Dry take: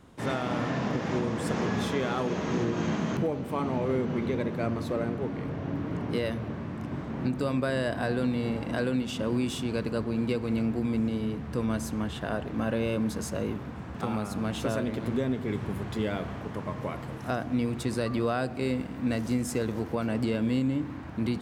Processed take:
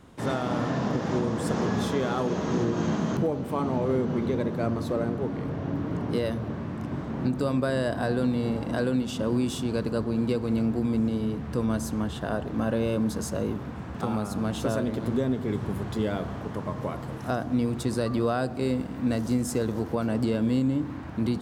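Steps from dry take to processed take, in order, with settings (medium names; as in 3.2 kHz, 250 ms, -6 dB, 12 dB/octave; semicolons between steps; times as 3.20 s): dynamic bell 2.3 kHz, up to -7 dB, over -53 dBFS, Q 1.6; trim +2.5 dB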